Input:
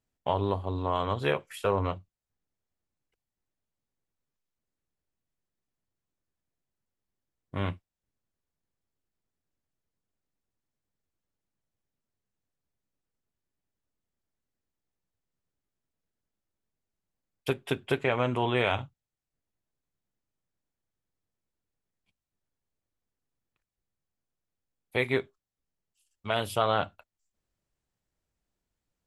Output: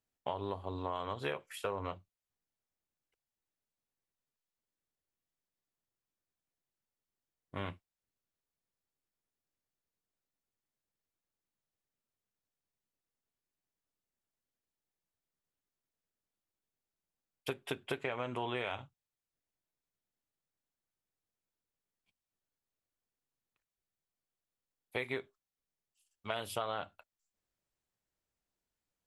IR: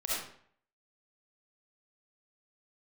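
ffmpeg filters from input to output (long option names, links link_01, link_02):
-af "lowshelf=frequency=240:gain=-7.5,acompressor=threshold=-29dB:ratio=6,volume=-3.5dB"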